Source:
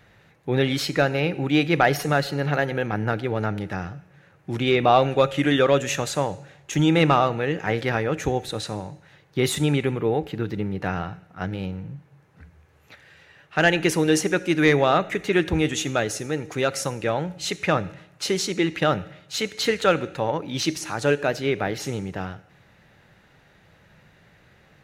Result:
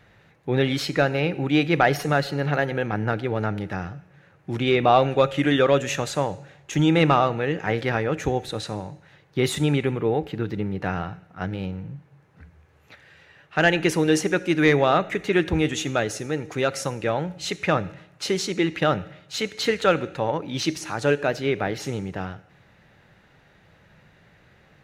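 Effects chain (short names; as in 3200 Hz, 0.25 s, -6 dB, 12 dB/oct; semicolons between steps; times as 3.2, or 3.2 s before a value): high shelf 6500 Hz -5.5 dB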